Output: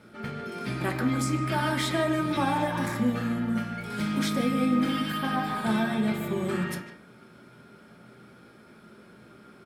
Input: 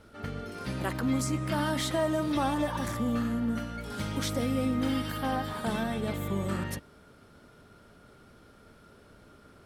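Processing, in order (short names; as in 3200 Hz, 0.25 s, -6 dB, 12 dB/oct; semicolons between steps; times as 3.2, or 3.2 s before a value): speakerphone echo 0.15 s, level -8 dB; reverb RT60 0.35 s, pre-delay 3 ms, DRR 2.5 dB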